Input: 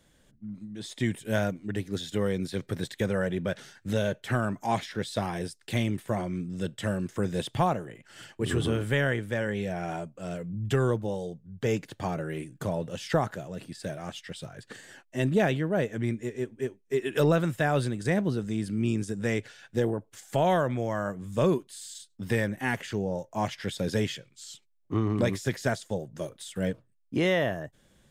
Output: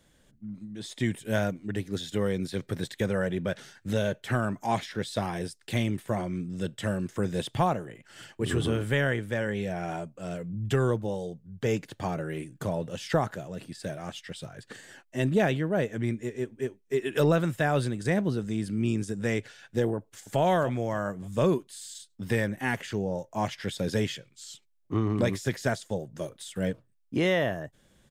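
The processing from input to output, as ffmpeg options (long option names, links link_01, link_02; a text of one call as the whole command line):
ffmpeg -i in.wav -filter_complex "[0:a]asplit=2[link_01][link_02];[link_02]afade=type=in:start_time=19.97:duration=0.01,afade=type=out:start_time=20.4:duration=0.01,aecho=0:1:290|580|870|1160:0.266073|0.0931254|0.0325939|0.0114079[link_03];[link_01][link_03]amix=inputs=2:normalize=0" out.wav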